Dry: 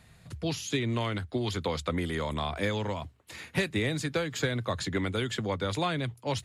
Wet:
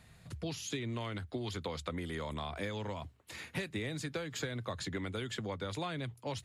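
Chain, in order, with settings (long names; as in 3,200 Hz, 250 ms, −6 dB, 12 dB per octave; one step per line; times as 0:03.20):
downward compressor 2.5 to 1, threshold −35 dBFS, peak gain reduction 8.5 dB
level −2.5 dB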